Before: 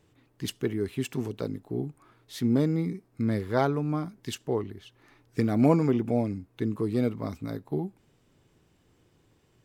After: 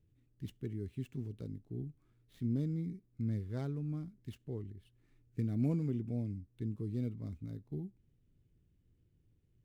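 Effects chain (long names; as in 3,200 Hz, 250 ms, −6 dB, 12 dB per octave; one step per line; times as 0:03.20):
running median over 9 samples
guitar amp tone stack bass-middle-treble 10-0-1
level +6.5 dB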